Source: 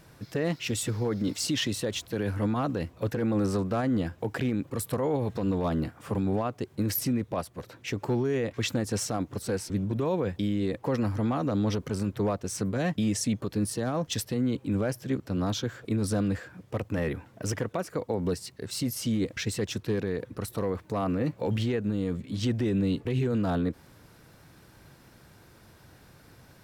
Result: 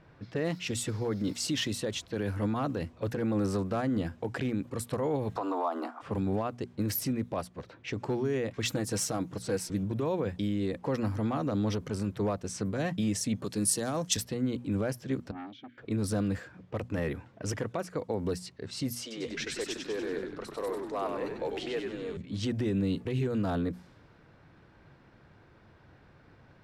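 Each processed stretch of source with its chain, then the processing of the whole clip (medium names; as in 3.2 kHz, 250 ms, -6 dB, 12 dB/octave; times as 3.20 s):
5.36–6.02 s: steep high-pass 250 Hz 72 dB/octave + high-order bell 940 Hz +14 dB 1.3 oct + compression 5:1, threshold -24 dBFS
8.65–9.83 s: treble shelf 6.5 kHz +5 dB + comb 6.3 ms, depth 39%
13.44–14.17 s: high-pass 110 Hz + peaking EQ 8.9 kHz +12.5 dB 1.8 oct
15.31–15.78 s: vowel filter i + transformer saturation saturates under 1 kHz
19.01–22.17 s: high-pass 360 Hz 24 dB/octave + frequency-shifting echo 96 ms, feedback 54%, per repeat -76 Hz, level -4 dB
whole clip: hum notches 60/120/180/240 Hz; level-controlled noise filter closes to 2.4 kHz, open at -25.5 dBFS; trim -2.5 dB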